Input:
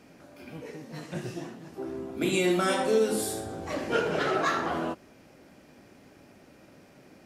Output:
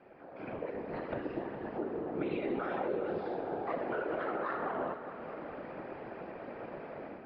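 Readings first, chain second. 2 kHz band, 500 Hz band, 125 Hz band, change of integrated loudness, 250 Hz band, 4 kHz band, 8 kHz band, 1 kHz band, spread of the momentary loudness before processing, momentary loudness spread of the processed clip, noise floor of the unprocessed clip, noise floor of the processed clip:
-9.5 dB, -6.5 dB, -9.5 dB, -9.5 dB, -6.5 dB, -20.5 dB, under -40 dB, -5.5 dB, 17 LU, 10 LU, -56 dBFS, -49 dBFS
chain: high-pass 430 Hz 12 dB/octave; peaking EQ 4.1 kHz -14 dB 1.9 oct; level rider gain up to 14 dB; peak limiter -13.5 dBFS, peak gain reduction 9 dB; compression 3:1, threshold -42 dBFS, peak gain reduction 17.5 dB; whisper effect; distance through air 310 m; multi-head delay 207 ms, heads first and second, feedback 62%, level -14 dB; resampled via 11.025 kHz; trim +3.5 dB

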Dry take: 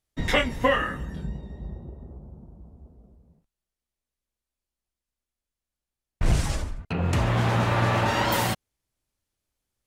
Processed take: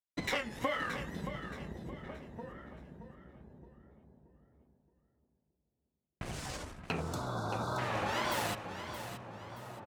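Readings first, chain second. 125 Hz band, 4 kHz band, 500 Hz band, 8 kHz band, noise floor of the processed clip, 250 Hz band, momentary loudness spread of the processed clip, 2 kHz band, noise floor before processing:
-15.5 dB, -9.5 dB, -10.5 dB, -8.5 dB, -85 dBFS, -11.0 dB, 18 LU, -10.0 dB, under -85 dBFS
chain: tracing distortion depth 0.039 ms; in parallel at -5.5 dB: crossover distortion -34 dBFS; on the sum: compression 12:1, threshold -29 dBFS, peak gain reduction 16.5 dB; high-pass 260 Hz 6 dB/octave; gate with hold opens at -49 dBFS; echo from a far wall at 300 m, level -11 dB; wow and flutter 140 cents; spectral selection erased 7.01–7.78 s, 1.6–3.4 kHz; on a send: feedback delay 624 ms, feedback 36%, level -10 dB

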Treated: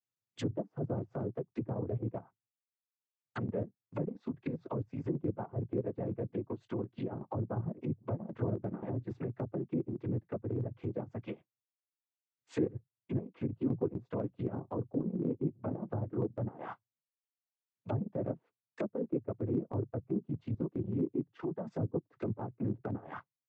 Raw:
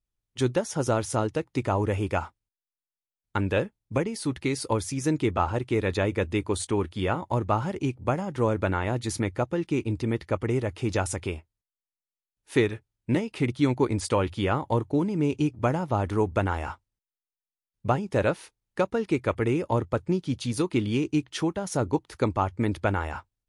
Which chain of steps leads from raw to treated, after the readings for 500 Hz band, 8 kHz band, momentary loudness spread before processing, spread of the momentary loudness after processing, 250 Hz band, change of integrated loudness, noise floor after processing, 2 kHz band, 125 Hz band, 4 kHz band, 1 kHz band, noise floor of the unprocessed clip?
-11.0 dB, under -30 dB, 5 LU, 6 LU, -9.0 dB, -10.0 dB, under -85 dBFS, -21.5 dB, -8.5 dB, under -20 dB, -17.5 dB, under -85 dBFS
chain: noise-vocoded speech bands 16; low-pass that closes with the level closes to 470 Hz, closed at -24.5 dBFS; transient shaper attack -3 dB, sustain -8 dB; trim -6 dB

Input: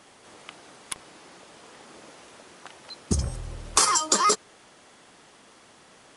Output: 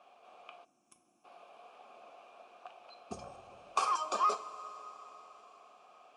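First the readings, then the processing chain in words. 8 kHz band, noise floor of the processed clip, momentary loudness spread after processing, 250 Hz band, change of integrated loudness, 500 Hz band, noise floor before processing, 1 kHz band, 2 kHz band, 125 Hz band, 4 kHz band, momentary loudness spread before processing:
-24.5 dB, -73 dBFS, 23 LU, -19.0 dB, -11.5 dB, -9.5 dB, -55 dBFS, -6.0 dB, -13.5 dB, -27.5 dB, -18.5 dB, 19 LU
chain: vowel filter a; two-slope reverb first 0.31 s, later 4.8 s, from -18 dB, DRR 6.5 dB; time-frequency box 0.65–1.25 s, 380–5200 Hz -20 dB; trim +3 dB

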